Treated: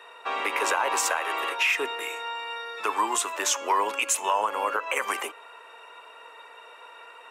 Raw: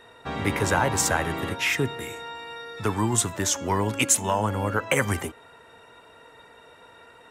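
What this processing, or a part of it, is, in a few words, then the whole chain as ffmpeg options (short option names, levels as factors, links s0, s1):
laptop speaker: -filter_complex "[0:a]asettb=1/sr,asplit=3[s0][s1][s2];[s0]atrim=end=1.084[s3];[s1]atrim=start=1.08:end=1.59,asetpts=PTS-STARTPTS,afade=t=in:d=0.004:c=qsin,afade=t=out:st=0.506:d=0.004:c=qsin,highpass=360[s4];[s2]atrim=start=1.586[s5];[s3][s4]acrossfade=d=0.004:c1=hsin:c2=qsin[s6];[s6][s5]acrossfade=d=0.004:c1=qsin:c2=hsin,highpass=f=410:w=0.5412,highpass=f=410:w=1.3066,equalizer=f=1100:t=o:w=0.52:g=9,equalizer=f=2600:t=o:w=0.39:g=10,alimiter=limit=0.2:level=0:latency=1:release=113"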